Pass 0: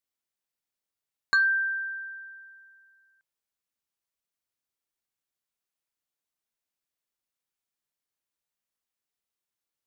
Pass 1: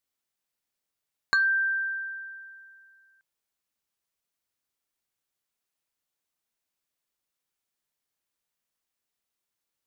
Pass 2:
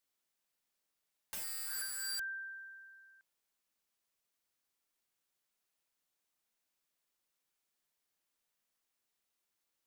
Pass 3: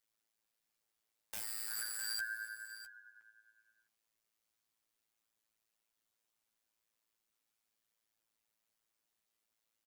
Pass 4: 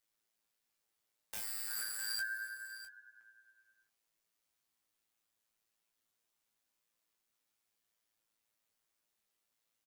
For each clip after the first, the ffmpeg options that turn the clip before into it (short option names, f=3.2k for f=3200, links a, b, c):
-af "acompressor=threshold=-28dB:ratio=2,volume=3.5dB"
-af "equalizer=f=88:t=o:w=1.4:g=-6,alimiter=limit=-23dB:level=0:latency=1:release=17,aeval=exprs='(mod(59.6*val(0)+1,2)-1)/59.6':c=same"
-af "tremolo=f=110:d=0.919,flanger=delay=8.6:depth=8.7:regen=20:speed=0.36:shape=triangular,aecho=1:1:657:0.188,volume=7dB"
-filter_complex "[0:a]asplit=2[a][b];[b]adelay=23,volume=-6.5dB[c];[a][c]amix=inputs=2:normalize=0"